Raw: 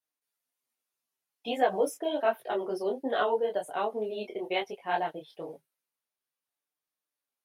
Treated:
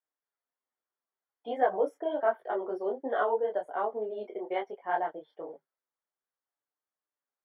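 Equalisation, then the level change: polynomial smoothing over 41 samples; HPF 320 Hz 12 dB/oct; 0.0 dB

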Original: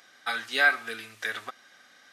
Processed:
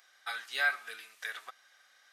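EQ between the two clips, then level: HPF 650 Hz 12 dB/oct; high shelf 9400 Hz +5.5 dB; -7.5 dB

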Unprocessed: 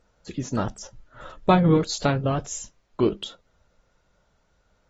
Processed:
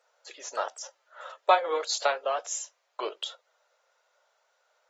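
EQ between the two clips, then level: steep high-pass 520 Hz 36 dB/oct; 0.0 dB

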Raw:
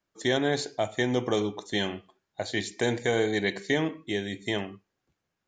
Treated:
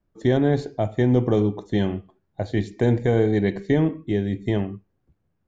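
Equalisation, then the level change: tilt -4.5 dB/oct; 0.0 dB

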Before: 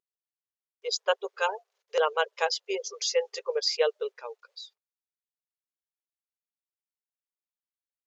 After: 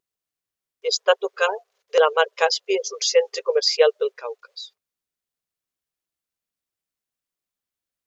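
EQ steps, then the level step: low shelf 400 Hz +5 dB; notch 880 Hz, Q 12; +7.0 dB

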